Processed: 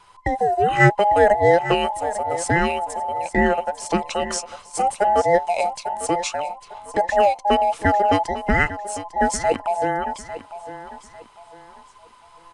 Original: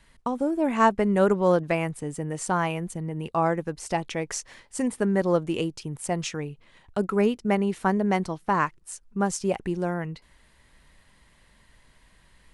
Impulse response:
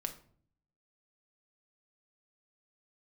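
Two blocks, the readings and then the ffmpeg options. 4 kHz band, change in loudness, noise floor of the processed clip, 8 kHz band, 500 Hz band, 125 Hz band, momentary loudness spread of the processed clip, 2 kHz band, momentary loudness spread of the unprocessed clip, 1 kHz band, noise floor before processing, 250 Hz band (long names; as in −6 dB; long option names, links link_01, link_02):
+8.0 dB, +6.0 dB, −50 dBFS, +5.5 dB, +6.0 dB, +3.0 dB, 14 LU, +9.5 dB, 12 LU, +9.5 dB, −60 dBFS, −1.5 dB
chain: -filter_complex "[0:a]afftfilt=real='real(if(between(b,1,1008),(2*floor((b-1)/48)+1)*48-b,b),0)':imag='imag(if(between(b,1,1008),(2*floor((b-1)/48)+1)*48-b,b),0)*if(between(b,1,1008),-1,1)':win_size=2048:overlap=0.75,asplit=2[link_01][link_02];[link_02]aecho=0:1:850|1700|2550:0.211|0.0676|0.0216[link_03];[link_01][link_03]amix=inputs=2:normalize=0,aresample=22050,aresample=44100,volume=5.5dB"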